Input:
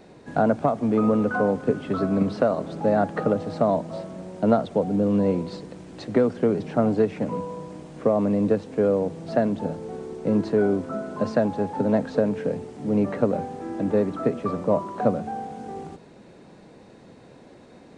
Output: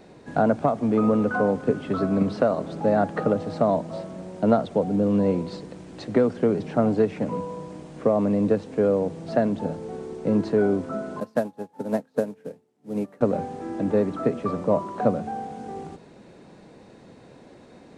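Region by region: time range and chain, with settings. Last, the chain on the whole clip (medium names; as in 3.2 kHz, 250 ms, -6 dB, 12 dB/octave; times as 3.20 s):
11.20–13.21 s: CVSD coder 64 kbps + high-pass 140 Hz + upward expansion 2.5:1, over -37 dBFS
whole clip: none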